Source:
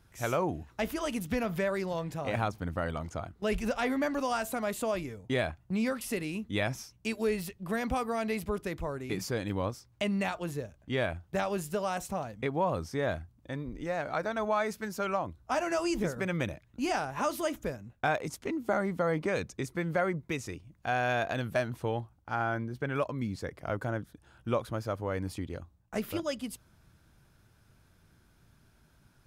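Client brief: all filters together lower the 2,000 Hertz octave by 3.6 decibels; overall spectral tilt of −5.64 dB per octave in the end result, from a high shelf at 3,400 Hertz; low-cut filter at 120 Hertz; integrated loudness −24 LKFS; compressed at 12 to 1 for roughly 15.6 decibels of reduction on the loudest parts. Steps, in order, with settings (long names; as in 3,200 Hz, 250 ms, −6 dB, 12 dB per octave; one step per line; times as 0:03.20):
high-pass filter 120 Hz
parametric band 2,000 Hz −3 dB
high-shelf EQ 3,400 Hz −6.5 dB
downward compressor 12 to 1, threshold −41 dBFS
level +22.5 dB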